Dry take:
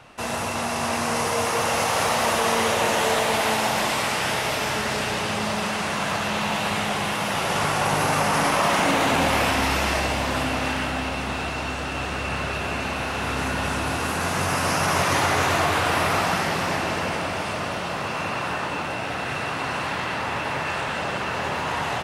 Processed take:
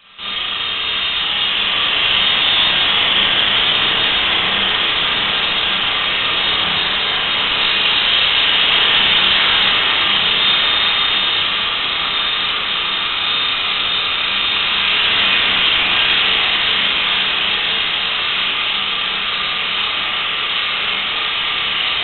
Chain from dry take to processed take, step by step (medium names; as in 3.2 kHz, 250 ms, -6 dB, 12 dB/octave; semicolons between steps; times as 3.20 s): high-pass 110 Hz; echo that smears into a reverb 1280 ms, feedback 58%, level -4.5 dB; Schroeder reverb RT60 0.68 s, combs from 27 ms, DRR -6.5 dB; frequency inversion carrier 3.9 kHz; trim -1 dB